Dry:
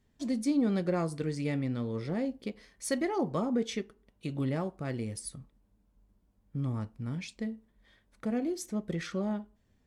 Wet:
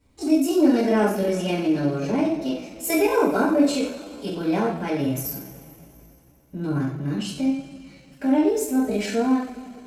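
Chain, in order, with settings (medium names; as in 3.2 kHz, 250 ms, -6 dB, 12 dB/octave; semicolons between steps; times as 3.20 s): two-slope reverb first 0.57 s, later 3.1 s, from -18 dB, DRR -10 dB; pitch shift +3.5 st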